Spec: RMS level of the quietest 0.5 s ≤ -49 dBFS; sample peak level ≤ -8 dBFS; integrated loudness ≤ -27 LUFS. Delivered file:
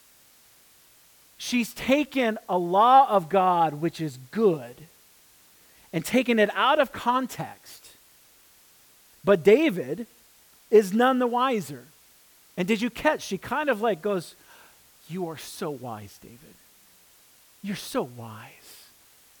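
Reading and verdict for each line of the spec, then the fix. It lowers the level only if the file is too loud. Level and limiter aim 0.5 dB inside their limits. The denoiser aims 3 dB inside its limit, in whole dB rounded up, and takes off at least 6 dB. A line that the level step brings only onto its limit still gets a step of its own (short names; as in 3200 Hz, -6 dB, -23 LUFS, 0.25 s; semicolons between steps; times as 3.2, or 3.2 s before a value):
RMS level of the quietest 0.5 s -57 dBFS: OK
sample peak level -7.0 dBFS: fail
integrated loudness -24.0 LUFS: fail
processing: gain -3.5 dB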